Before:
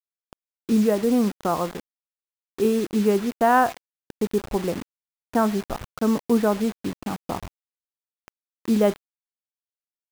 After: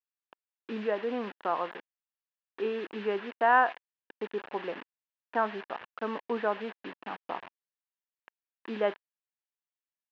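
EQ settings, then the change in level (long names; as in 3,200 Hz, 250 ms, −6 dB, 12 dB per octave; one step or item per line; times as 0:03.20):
loudspeaker in its box 430–3,300 Hz, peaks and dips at 960 Hz +4 dB, 1,700 Hz +8 dB, 2,800 Hz +5 dB
−6.5 dB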